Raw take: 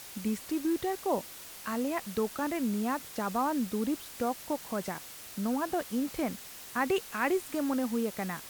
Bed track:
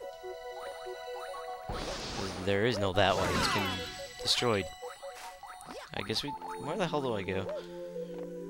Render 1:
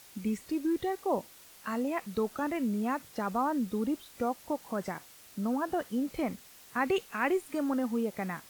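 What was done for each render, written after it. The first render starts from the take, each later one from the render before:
noise reduction from a noise print 8 dB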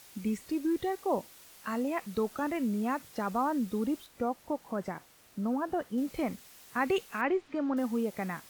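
0:04.06–0:05.98: high-shelf EQ 2,200 Hz −7.5 dB
0:07.21–0:07.77: high-frequency loss of the air 190 metres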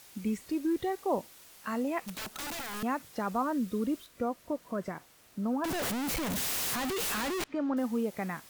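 0:02.07–0:02.83: wrap-around overflow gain 33.5 dB
0:03.42–0:04.93: Butterworth band-reject 830 Hz, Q 4.7
0:05.64–0:07.44: sign of each sample alone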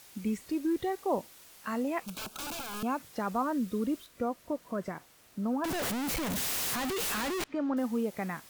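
0:02.03–0:02.98: Butterworth band-reject 1,900 Hz, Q 3.7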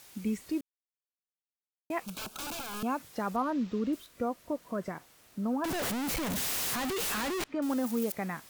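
0:00.61–0:01.90: silence
0:03.36–0:03.93: linearly interpolated sample-rate reduction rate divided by 4×
0:07.62–0:08.12: spike at every zero crossing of −29.5 dBFS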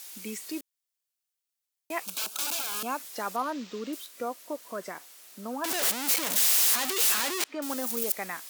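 high-pass filter 350 Hz 12 dB per octave
high-shelf EQ 2,600 Hz +11.5 dB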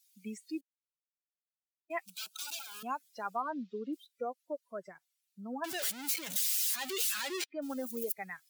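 spectral dynamics exaggerated over time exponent 2
downward compressor, threshold −29 dBFS, peak gain reduction 5.5 dB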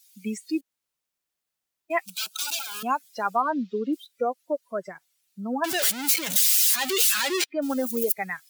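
level +11.5 dB

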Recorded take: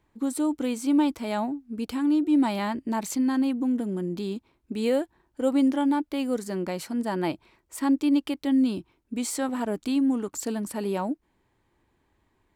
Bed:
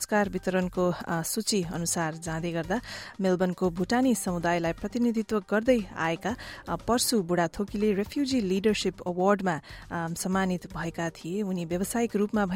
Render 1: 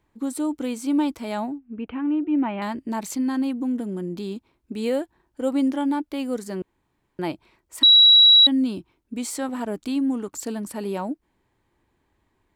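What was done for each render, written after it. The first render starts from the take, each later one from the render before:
0:01.58–0:02.62: elliptic low-pass filter 2,800 Hz, stop band 60 dB
0:06.62–0:07.19: fill with room tone
0:07.83–0:08.47: beep over 3,890 Hz −9 dBFS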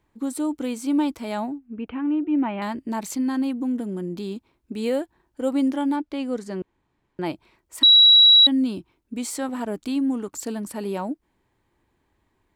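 0:05.96–0:07.26: high-frequency loss of the air 57 metres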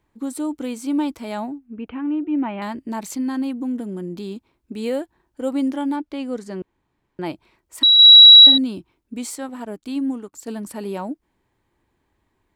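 0:07.94–0:08.58: flutter between parallel walls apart 8.6 metres, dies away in 0.6 s
0:09.35–0:10.48: expander for the loud parts, over −41 dBFS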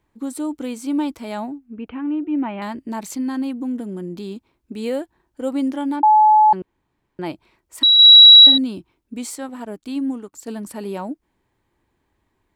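0:06.03–0:06.53: beep over 857 Hz −8.5 dBFS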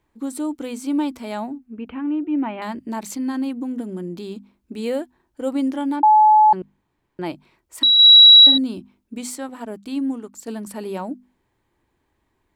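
mains-hum notches 50/100/150/200/250 Hz
dynamic equaliser 2,600 Hz, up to −5 dB, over −27 dBFS, Q 1.6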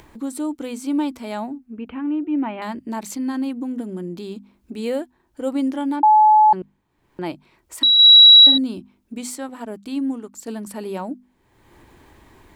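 upward compression, threshold −32 dBFS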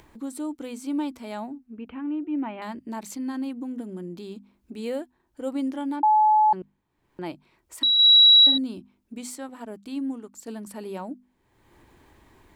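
level −6 dB

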